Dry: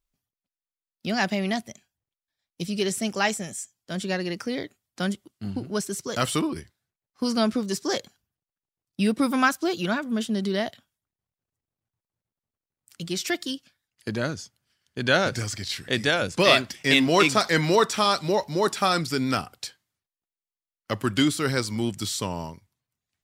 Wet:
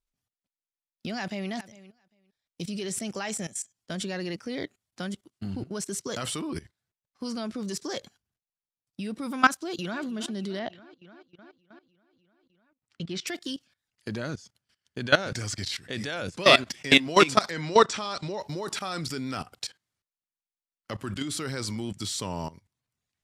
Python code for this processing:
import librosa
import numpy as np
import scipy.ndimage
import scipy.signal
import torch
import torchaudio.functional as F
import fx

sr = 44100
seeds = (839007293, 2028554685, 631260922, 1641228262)

y = fx.echo_throw(x, sr, start_s=1.1, length_s=0.4, ms=400, feedback_pct=10, wet_db=-16.0)
y = fx.echo_throw(y, sr, start_s=9.56, length_s=0.51, ms=300, feedback_pct=75, wet_db=-18.0)
y = fx.lowpass(y, sr, hz=3500.0, slope=12, at=(10.59, 13.27))
y = fx.lowpass(y, sr, hz=8000.0, slope=24, at=(17.51, 18.4))
y = scipy.signal.sosfilt(scipy.signal.butter(2, 11000.0, 'lowpass', fs=sr, output='sos'), y)
y = fx.level_steps(y, sr, step_db=18)
y = y * librosa.db_to_amplitude(3.5)